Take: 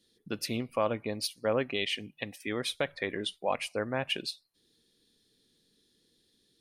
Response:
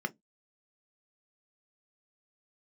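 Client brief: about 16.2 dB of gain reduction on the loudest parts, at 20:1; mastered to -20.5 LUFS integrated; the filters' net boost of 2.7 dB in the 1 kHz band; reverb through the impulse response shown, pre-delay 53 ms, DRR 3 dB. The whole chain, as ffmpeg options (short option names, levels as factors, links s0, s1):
-filter_complex "[0:a]equalizer=f=1000:t=o:g=3.5,acompressor=threshold=0.0126:ratio=20,asplit=2[s0][s1];[1:a]atrim=start_sample=2205,adelay=53[s2];[s1][s2]afir=irnorm=-1:irlink=0,volume=0.422[s3];[s0][s3]amix=inputs=2:normalize=0,volume=12.6"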